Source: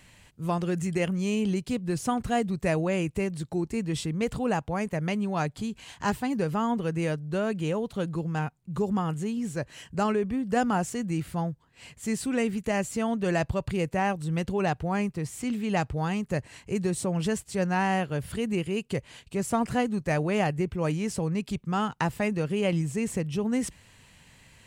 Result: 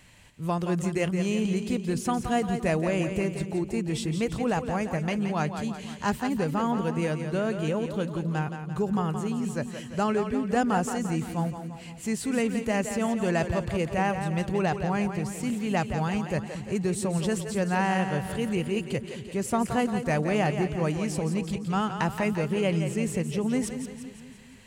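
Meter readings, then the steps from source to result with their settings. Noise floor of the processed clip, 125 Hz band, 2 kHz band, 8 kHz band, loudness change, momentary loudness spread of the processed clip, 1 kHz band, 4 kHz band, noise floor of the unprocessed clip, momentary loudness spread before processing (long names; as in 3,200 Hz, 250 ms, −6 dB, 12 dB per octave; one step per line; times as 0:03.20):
−42 dBFS, +1.0 dB, +1.0 dB, +1.0 dB, +1.0 dB, 6 LU, +1.0 dB, +1.0 dB, −58 dBFS, 5 LU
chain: echo with a time of its own for lows and highs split 320 Hz, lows 235 ms, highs 172 ms, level −8 dB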